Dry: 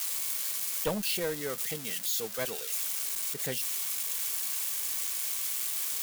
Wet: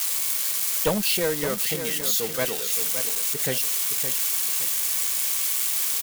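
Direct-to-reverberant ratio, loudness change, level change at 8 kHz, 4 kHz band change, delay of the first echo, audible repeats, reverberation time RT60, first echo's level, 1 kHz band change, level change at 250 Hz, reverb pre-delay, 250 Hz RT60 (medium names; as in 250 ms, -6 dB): no reverb, +8.0 dB, +8.0 dB, +8.0 dB, 567 ms, 3, no reverb, -9.0 dB, +8.0 dB, +8.0 dB, no reverb, no reverb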